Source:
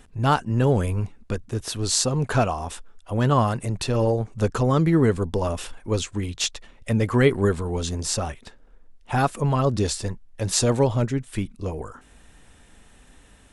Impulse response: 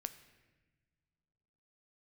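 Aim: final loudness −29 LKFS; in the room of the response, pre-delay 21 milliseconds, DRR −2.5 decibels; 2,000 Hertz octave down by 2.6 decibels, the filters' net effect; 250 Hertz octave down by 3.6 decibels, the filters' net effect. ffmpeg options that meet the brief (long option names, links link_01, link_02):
-filter_complex "[0:a]equalizer=frequency=250:width_type=o:gain=-5,equalizer=frequency=2000:width_type=o:gain=-3.5,asplit=2[link_01][link_02];[1:a]atrim=start_sample=2205,adelay=21[link_03];[link_02][link_03]afir=irnorm=-1:irlink=0,volume=5dB[link_04];[link_01][link_04]amix=inputs=2:normalize=0,volume=-8.5dB"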